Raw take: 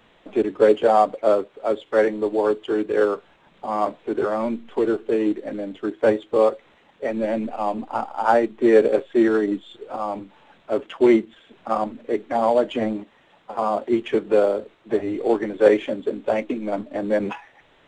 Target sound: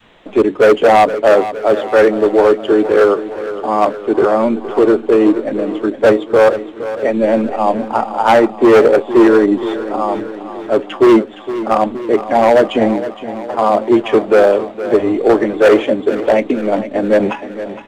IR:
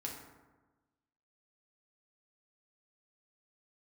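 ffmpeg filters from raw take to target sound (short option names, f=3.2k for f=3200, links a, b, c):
-filter_complex "[0:a]adynamicequalizer=threshold=0.0708:dfrequency=470:dqfactor=0.71:tfrequency=470:tqfactor=0.71:attack=5:release=100:ratio=0.375:range=1.5:mode=boostabove:tftype=bell,volume=13dB,asoftclip=hard,volume=-13dB,asplit=2[a][b];[b]aecho=0:1:465|930|1395|1860|2325|2790:0.224|0.132|0.0779|0.046|0.0271|0.016[c];[a][c]amix=inputs=2:normalize=0,volume=8.5dB"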